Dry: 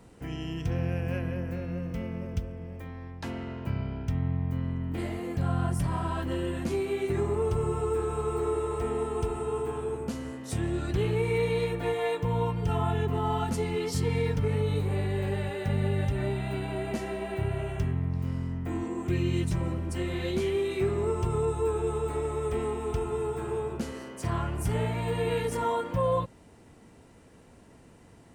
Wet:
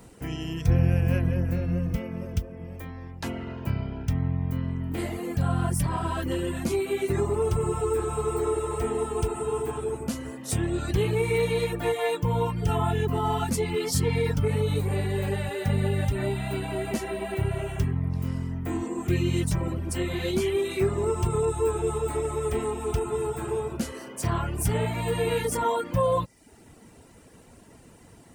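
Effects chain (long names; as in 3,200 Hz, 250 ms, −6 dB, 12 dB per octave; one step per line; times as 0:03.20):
0:00.68–0:01.96: low-shelf EQ 140 Hz +11 dB
reverb reduction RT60 0.61 s
high-shelf EQ 7,600 Hz +10.5 dB
level +4 dB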